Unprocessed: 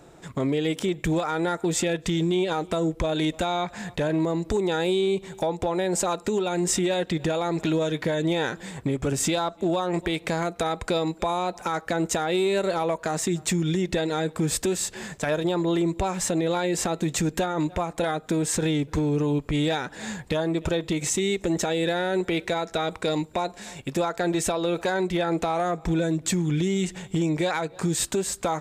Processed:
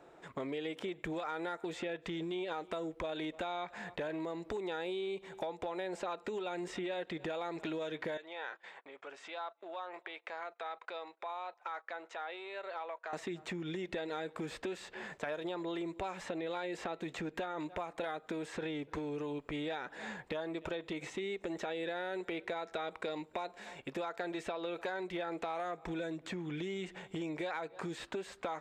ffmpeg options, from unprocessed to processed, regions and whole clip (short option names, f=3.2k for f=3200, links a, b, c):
-filter_complex "[0:a]asettb=1/sr,asplit=3[a][b][c];[a]atrim=end=8.174[d];[b]atrim=start=8.17:end=13.13,asetpts=PTS-STARTPTS,afade=t=in:d=0.004:c=qsin,afade=t=out:st=4.956:d=0.004:c=qsin,acompressor=threshold=-37dB:ratio=1.5:attack=3.2:release=140:knee=1:detection=peak,agate=range=-17dB:threshold=-41dB:ratio=16:release=100:detection=peak,highpass=750,lowpass=4.4k[e];[c]atrim=start=13.126[f];[d][e]acrossfade=d=0.004:c1=hsin:c2=qsin[g];[g][f]acrossfade=d=0.004:c1=qsin:c2=hsin,bass=f=250:g=-14,treble=f=4k:g=-14,acrossover=split=1900|4500[h][i][j];[h]acompressor=threshold=-32dB:ratio=4[k];[i]acompressor=threshold=-42dB:ratio=4[l];[j]acompressor=threshold=-57dB:ratio=4[m];[k][l][m]amix=inputs=3:normalize=0,volume=-5dB"